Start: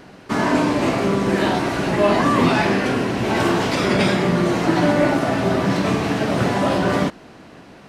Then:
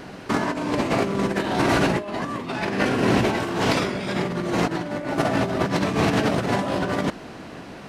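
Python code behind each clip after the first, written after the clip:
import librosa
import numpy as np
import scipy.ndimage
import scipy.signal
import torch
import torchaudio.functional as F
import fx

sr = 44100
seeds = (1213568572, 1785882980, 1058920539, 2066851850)

y = fx.over_compress(x, sr, threshold_db=-22.0, ratio=-0.5)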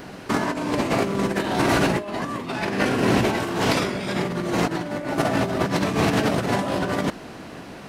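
y = fx.high_shelf(x, sr, hz=11000.0, db=9.5)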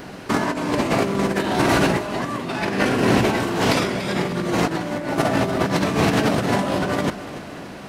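y = fx.echo_feedback(x, sr, ms=288, feedback_pct=51, wet_db=-14.5)
y = F.gain(torch.from_numpy(y), 2.0).numpy()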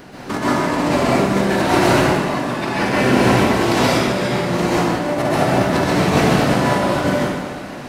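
y = fx.rev_plate(x, sr, seeds[0], rt60_s=1.2, hf_ratio=0.8, predelay_ms=115, drr_db=-7.0)
y = F.gain(torch.from_numpy(y), -3.5).numpy()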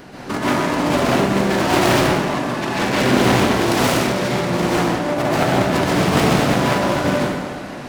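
y = fx.self_delay(x, sr, depth_ms=0.38)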